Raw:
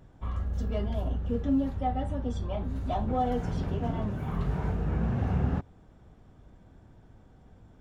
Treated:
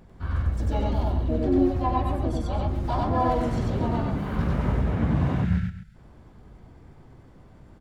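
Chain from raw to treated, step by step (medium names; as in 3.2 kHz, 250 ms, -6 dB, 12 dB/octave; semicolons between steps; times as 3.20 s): harmony voices +5 st -1 dB; time-frequency box 5.36–5.95 s, 230–1300 Hz -23 dB; loudspeakers at several distances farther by 33 m -1 dB, 79 m -12 dB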